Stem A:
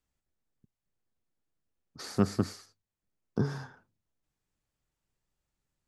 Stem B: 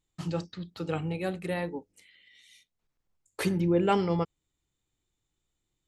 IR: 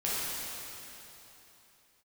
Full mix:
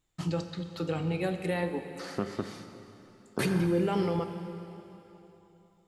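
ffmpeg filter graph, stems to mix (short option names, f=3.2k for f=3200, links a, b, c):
-filter_complex "[0:a]bass=f=250:g=-8,treble=f=4k:g=-11,acompressor=threshold=-31dB:ratio=6,volume=2dB,asplit=2[a][b];[b]volume=-15dB[c];[1:a]alimiter=limit=-22dB:level=0:latency=1,volume=0.5dB,asplit=2[d][e];[e]volume=-14.5dB[f];[2:a]atrim=start_sample=2205[g];[c][f]amix=inputs=2:normalize=0[h];[h][g]afir=irnorm=-1:irlink=0[i];[a][d][i]amix=inputs=3:normalize=0"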